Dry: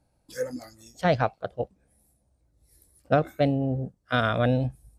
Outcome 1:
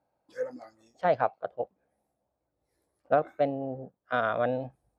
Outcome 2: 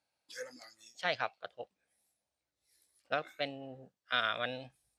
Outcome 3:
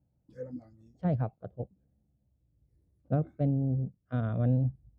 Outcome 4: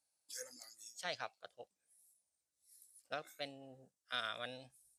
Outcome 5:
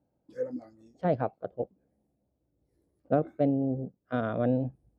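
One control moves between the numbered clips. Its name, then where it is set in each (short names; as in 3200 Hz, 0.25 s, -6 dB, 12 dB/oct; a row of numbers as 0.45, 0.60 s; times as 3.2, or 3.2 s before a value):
band-pass, frequency: 810, 3100, 130, 7900, 320 Hz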